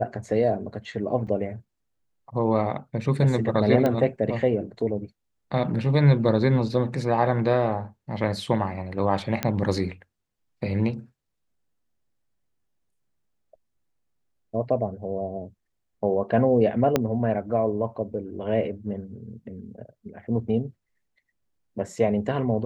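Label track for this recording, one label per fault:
1.270000	1.270000	gap 4.6 ms
3.860000	3.860000	pop -12 dBFS
9.430000	9.430000	pop -9 dBFS
16.960000	16.960000	pop -7 dBFS

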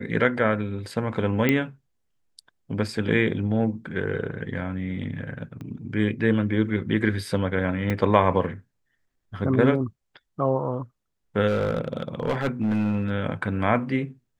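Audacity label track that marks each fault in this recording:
1.490000	1.490000	pop -8 dBFS
5.610000	5.610000	pop -26 dBFS
7.900000	7.900000	gap 2.2 ms
11.470000	13.100000	clipped -19 dBFS

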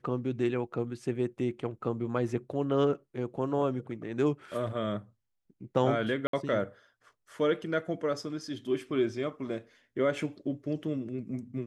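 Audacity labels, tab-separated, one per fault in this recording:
6.270000	6.330000	gap 63 ms

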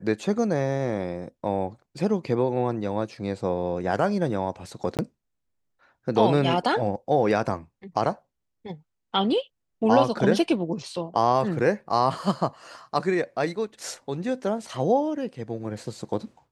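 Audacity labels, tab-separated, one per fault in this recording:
4.970000	4.990000	gap 18 ms

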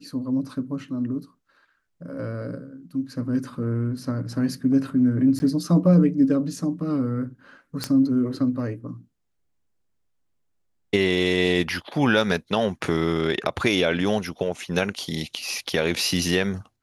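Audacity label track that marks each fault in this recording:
5.390000	5.400000	gap 10 ms
7.840000	7.840000	pop -10 dBFS

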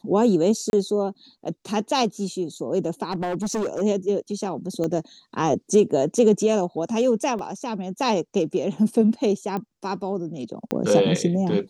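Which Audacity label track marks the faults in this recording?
0.700000	0.730000	gap 31 ms
3.110000	3.820000	clipped -22 dBFS
4.840000	4.840000	pop -16 dBFS
7.390000	7.390000	gap 2.3 ms
9.570000	9.570000	pop -17 dBFS
10.710000	10.710000	pop -10 dBFS

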